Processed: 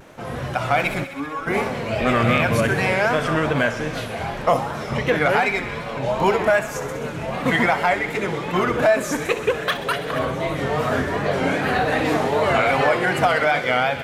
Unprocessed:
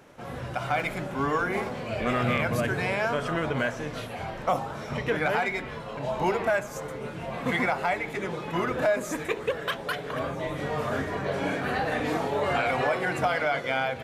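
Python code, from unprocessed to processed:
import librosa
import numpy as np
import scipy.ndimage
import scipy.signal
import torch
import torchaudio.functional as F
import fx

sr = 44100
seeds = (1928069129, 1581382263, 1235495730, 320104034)

p1 = fx.vibrato(x, sr, rate_hz=2.6, depth_cents=100.0)
p2 = fx.comb_fb(p1, sr, f0_hz=280.0, decay_s=0.17, harmonics='all', damping=0.0, mix_pct=90, at=(1.03, 1.46), fade=0.02)
p3 = p2 + fx.echo_wet_highpass(p2, sr, ms=65, feedback_pct=79, hz=1700.0, wet_db=-12.0, dry=0)
y = p3 * librosa.db_to_amplitude(7.5)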